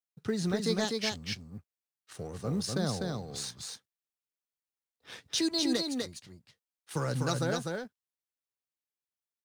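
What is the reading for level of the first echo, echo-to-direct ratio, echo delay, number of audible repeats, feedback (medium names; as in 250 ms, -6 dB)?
-3.5 dB, -3.5 dB, 249 ms, 1, no regular repeats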